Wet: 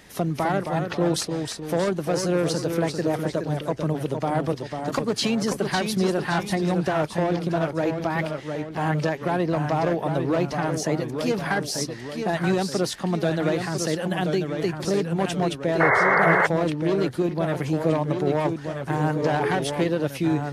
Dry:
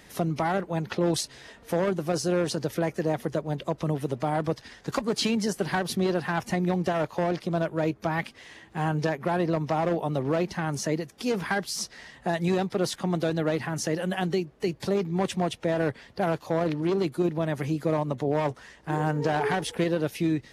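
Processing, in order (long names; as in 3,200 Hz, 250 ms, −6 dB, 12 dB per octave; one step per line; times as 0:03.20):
delay with pitch and tempo change per echo 244 ms, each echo −1 semitone, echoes 2, each echo −6 dB
sound drawn into the spectrogram noise, 0:15.80–0:16.47, 380–2,200 Hz −21 dBFS
level +2 dB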